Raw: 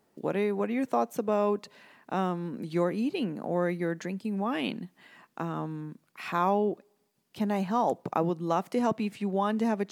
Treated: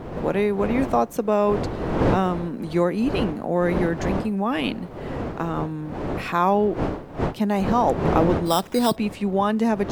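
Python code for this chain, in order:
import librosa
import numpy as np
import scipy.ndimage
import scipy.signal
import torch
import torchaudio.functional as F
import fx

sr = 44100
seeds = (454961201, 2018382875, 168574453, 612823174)

y = fx.dmg_wind(x, sr, seeds[0], corner_hz=490.0, level_db=-35.0)
y = fx.sample_hold(y, sr, seeds[1], rate_hz=4400.0, jitter_pct=0, at=(8.45, 8.95), fade=0.02)
y = F.gain(torch.from_numpy(y), 6.5).numpy()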